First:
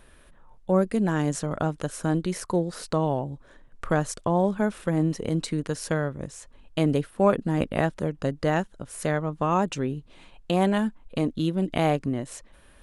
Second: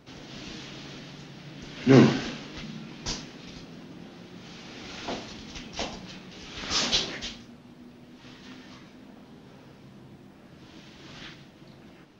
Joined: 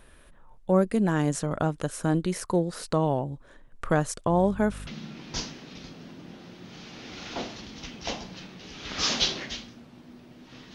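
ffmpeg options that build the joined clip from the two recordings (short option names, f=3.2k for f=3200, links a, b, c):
-filter_complex "[0:a]asettb=1/sr,asplit=3[a][b][c];[a]atrim=end=4.304[d];[b]atrim=start=4.3:end=4.87,asetpts=PTS-STARTPTS,afade=t=in:d=0.004:c=qsin,afade=t=out:st=0.566:d=0.004:c=qsin,aeval=exprs='val(0)+0.0126*(sin(2*PI*50*n/s)+sin(2*PI*2*50*n/s)/2+sin(2*PI*3*50*n/s)/3+sin(2*PI*4*50*n/s)/4+sin(2*PI*5*50*n/s)/5)':c=same[e];[c]atrim=start=4.866[f];[d][e]acrossfade=d=0.004:c1=hsin:c2=qsin[g];[g][f]acrossfade=d=0.004:c1=qsin:c2=hsin,apad=whole_dur=10.74,atrim=end=10.74,atrim=end=4.872[h];[1:a]atrim=start=2.588:end=8.46[i];[h][i]acrossfade=d=0.004:c1=hsin:c2=hsin"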